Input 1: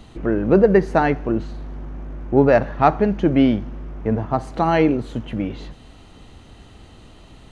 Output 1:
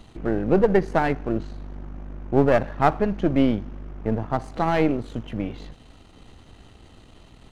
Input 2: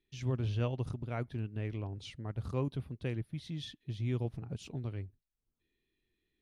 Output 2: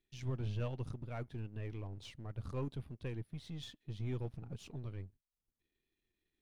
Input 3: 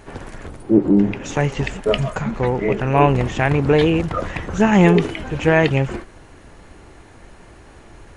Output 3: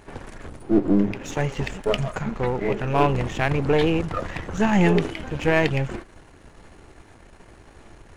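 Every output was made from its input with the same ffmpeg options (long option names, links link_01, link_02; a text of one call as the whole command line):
ffmpeg -i in.wav -af "aeval=exprs='if(lt(val(0),0),0.447*val(0),val(0))':channel_layout=same,volume=-2dB" out.wav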